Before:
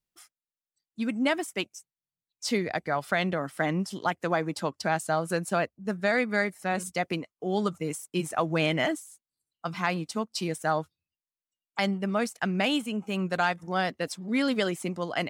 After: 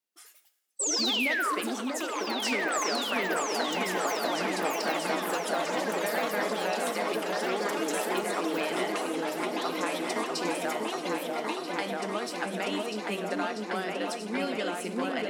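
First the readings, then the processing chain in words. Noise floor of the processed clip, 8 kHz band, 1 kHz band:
-48 dBFS, +6.0 dB, +0.5 dB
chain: high-pass 250 Hz 24 dB/octave; compression, threshold -31 dBFS, peak gain reduction 10.5 dB; ever faster or slower copies 127 ms, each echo +5 st, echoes 3; painted sound fall, 0.79–1.55 s, 1–8.4 kHz -29 dBFS; delay with an opening low-pass 642 ms, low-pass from 750 Hz, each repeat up 2 oct, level 0 dB; two-slope reverb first 0.87 s, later 2.3 s, DRR 9.5 dB

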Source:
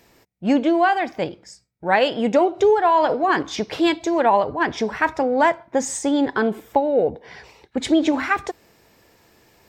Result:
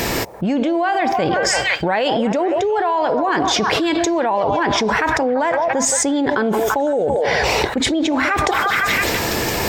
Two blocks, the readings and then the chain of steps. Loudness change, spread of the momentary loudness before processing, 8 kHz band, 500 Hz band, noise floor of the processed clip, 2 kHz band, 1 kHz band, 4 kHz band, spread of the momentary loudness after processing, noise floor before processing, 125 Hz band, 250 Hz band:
+2.5 dB, 10 LU, +12.0 dB, +2.0 dB, -22 dBFS, +6.0 dB, +2.5 dB, +9.5 dB, 2 LU, -59 dBFS, +10.0 dB, +1.5 dB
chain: repeats whose band climbs or falls 169 ms, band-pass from 640 Hz, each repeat 0.7 oct, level -11 dB; level flattener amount 100%; trim -5 dB

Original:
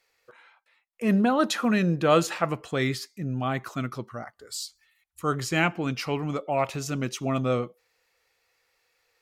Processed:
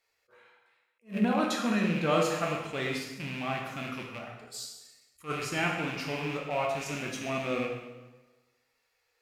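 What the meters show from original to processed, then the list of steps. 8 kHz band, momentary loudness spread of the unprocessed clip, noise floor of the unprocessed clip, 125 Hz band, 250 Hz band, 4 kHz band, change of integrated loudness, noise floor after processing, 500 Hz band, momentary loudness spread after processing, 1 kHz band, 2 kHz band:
-4.5 dB, 13 LU, -72 dBFS, -7.5 dB, -5.5 dB, -3.0 dB, -5.0 dB, -76 dBFS, -4.5 dB, 14 LU, -4.5 dB, -2.5 dB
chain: rattle on loud lows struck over -35 dBFS, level -22 dBFS; plate-style reverb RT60 1.2 s, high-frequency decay 0.85×, DRR -1 dB; attacks held to a fixed rise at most 280 dB/s; trim -8 dB

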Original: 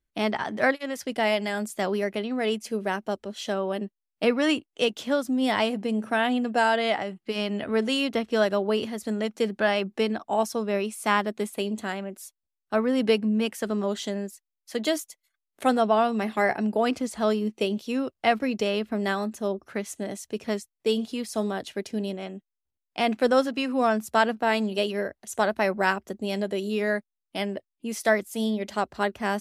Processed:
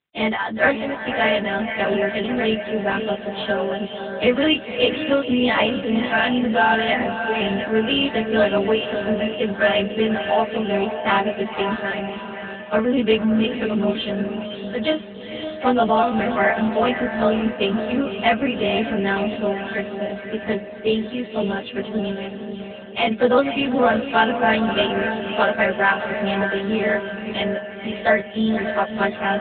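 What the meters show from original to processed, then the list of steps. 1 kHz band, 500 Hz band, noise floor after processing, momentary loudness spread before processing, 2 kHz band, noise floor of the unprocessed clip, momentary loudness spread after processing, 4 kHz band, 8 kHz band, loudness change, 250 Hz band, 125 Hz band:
+5.5 dB, +5.5 dB, -34 dBFS, 9 LU, +7.5 dB, -85 dBFS, 9 LU, +7.0 dB, under -40 dB, +5.5 dB, +5.5 dB, no reading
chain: partials quantised in pitch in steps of 2 st; echo that smears into a reverb 513 ms, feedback 48%, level -7 dB; trim +5.5 dB; AMR-NB 7.95 kbps 8 kHz

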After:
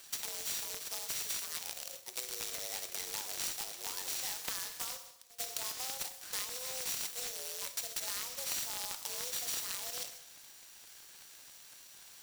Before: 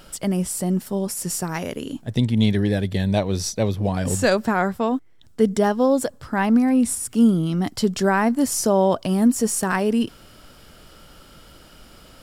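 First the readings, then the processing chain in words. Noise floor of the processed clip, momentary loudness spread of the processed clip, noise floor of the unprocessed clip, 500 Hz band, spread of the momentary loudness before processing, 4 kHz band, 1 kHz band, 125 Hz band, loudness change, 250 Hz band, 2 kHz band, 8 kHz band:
-55 dBFS, 16 LU, -49 dBFS, -29.0 dB, 8 LU, -5.5 dB, -22.5 dB, -39.5 dB, -16.0 dB, under -40 dB, -16.5 dB, -7.5 dB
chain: sorted samples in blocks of 8 samples; FDN reverb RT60 0.71 s, low-frequency decay 1×, high-frequency decay 1×, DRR 9 dB; peak limiter -12.5 dBFS, peak gain reduction 6.5 dB; differentiator; pre-echo 100 ms -24 dB; compression 5:1, threshold -31 dBFS, peak gain reduction 10.5 dB; frequency shift +260 Hz; delay time shaken by noise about 1.5 kHz, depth 0.034 ms

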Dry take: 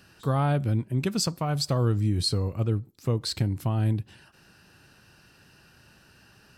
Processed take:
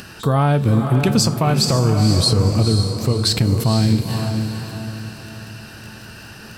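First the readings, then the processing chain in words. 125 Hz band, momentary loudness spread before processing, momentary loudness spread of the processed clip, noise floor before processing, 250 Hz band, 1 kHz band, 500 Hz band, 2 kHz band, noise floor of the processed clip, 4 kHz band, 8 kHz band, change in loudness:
+9.5 dB, 4 LU, 20 LU, -58 dBFS, +11.5 dB, +10.0 dB, +10.0 dB, +11.5 dB, -39 dBFS, +11.5 dB, +11.0 dB, +9.5 dB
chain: compression, threshold -28 dBFS, peak gain reduction 9.5 dB; echo that smears into a reverb 491 ms, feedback 45%, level -6.5 dB; upward compressor, threshold -51 dBFS; crackle 12 per s -44 dBFS; feedback comb 220 Hz, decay 0.33 s, harmonics all, mix 60%; loudness maximiser +28 dB; attacks held to a fixed rise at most 400 dB/s; trim -5 dB

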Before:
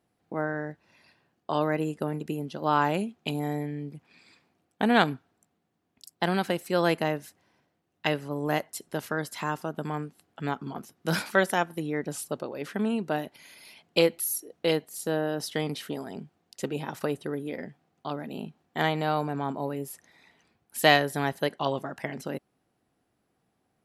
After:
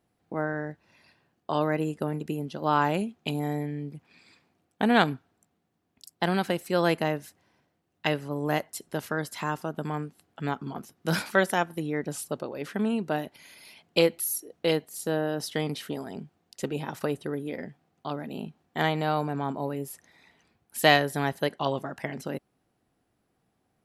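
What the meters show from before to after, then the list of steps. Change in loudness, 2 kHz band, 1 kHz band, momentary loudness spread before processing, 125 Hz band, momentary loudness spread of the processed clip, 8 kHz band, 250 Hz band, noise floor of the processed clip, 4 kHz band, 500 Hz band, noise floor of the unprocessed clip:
0.0 dB, 0.0 dB, 0.0 dB, 15 LU, +1.5 dB, 14 LU, 0.0 dB, +0.5 dB, -75 dBFS, 0.0 dB, 0.0 dB, -76 dBFS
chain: bass shelf 80 Hz +6 dB

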